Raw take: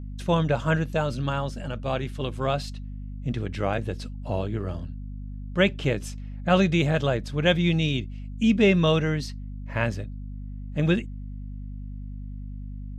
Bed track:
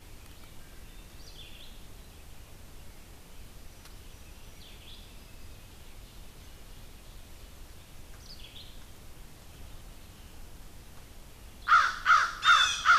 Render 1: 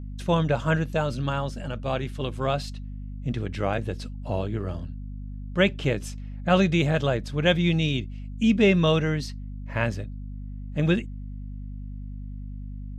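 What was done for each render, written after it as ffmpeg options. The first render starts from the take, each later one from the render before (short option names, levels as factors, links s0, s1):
-af anull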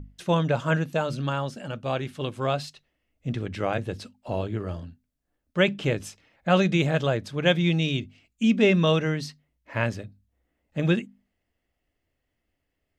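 -af "bandreject=f=50:t=h:w=6,bandreject=f=100:t=h:w=6,bandreject=f=150:t=h:w=6,bandreject=f=200:t=h:w=6,bandreject=f=250:t=h:w=6"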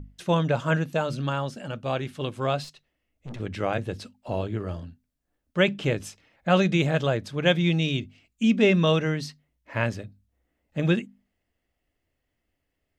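-filter_complex "[0:a]asettb=1/sr,asplit=3[s0][s1][s2];[s0]atrim=end=2.644[s3];[s1]atrim=start=2.64:end=3.4,asetpts=PTS-STARTPTS,afade=t=in:d=0.004:c=qsin,afade=t=out:st=0.756:d=0.004:c=qsin,aeval=exprs='(tanh(56.2*val(0)+0.45)-tanh(0.45))/56.2':c=same[s4];[s2]atrim=start=3.396[s5];[s3][s4]acrossfade=d=0.004:c1=hsin:c2=qsin[s6];[s6][s5]acrossfade=d=0.004:c1=qsin:c2=hsin"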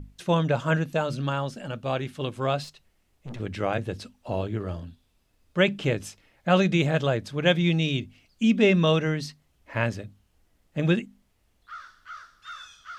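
-filter_complex "[1:a]volume=0.1[s0];[0:a][s0]amix=inputs=2:normalize=0"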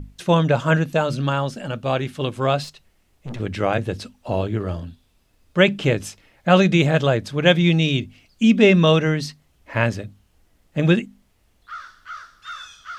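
-af "volume=2"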